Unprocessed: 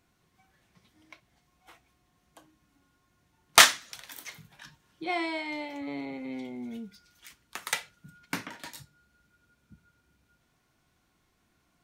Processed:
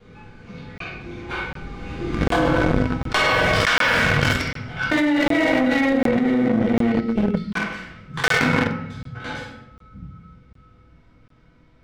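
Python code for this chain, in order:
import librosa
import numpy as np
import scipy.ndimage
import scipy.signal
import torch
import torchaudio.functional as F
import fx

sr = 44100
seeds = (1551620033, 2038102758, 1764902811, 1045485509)

y = fx.block_reorder(x, sr, ms=225.0, group=2)
y = fx.doppler_pass(y, sr, speed_mps=37, closest_m=4.4, pass_at_s=2.38)
y = scipy.signal.sosfilt(scipy.signal.butter(2, 3800.0, 'lowpass', fs=sr, output='sos'), y)
y = fx.low_shelf(y, sr, hz=240.0, db=8.5)
y = fx.doubler(y, sr, ms=48.0, db=-7)
y = fx.room_shoebox(y, sr, seeds[0], volume_m3=280.0, walls='mixed', distance_m=3.2)
y = fx.leveller(y, sr, passes=2)
y = fx.small_body(y, sr, hz=(490.0, 1500.0, 2200.0), ring_ms=90, db=13)
y = fx.buffer_crackle(y, sr, first_s=0.78, period_s=0.75, block=1024, kind='zero')
y = fx.env_flatten(y, sr, amount_pct=100)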